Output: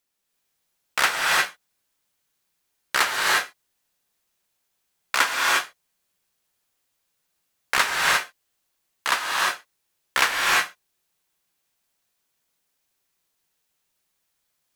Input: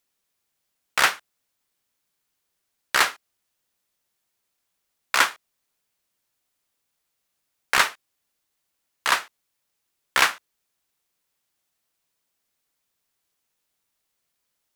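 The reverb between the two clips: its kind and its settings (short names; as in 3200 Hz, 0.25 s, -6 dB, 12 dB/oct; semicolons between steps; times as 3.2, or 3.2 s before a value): non-linear reverb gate 0.38 s rising, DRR -2.5 dB; gain -2 dB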